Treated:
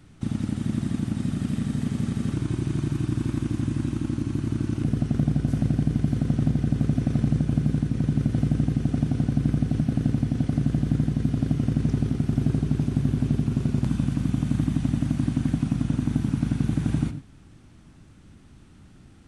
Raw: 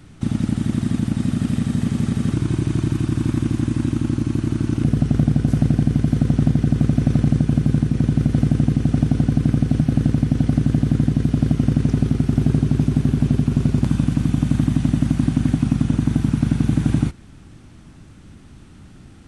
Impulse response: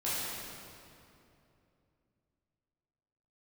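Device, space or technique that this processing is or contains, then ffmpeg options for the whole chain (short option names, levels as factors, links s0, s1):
keyed gated reverb: -filter_complex "[0:a]asplit=3[s0][s1][s2];[1:a]atrim=start_sample=2205[s3];[s1][s3]afir=irnorm=-1:irlink=0[s4];[s2]apad=whole_len=850116[s5];[s4][s5]sidechaingate=range=0.0224:threshold=0.0282:ratio=16:detection=peak,volume=0.126[s6];[s0][s6]amix=inputs=2:normalize=0,volume=0.447"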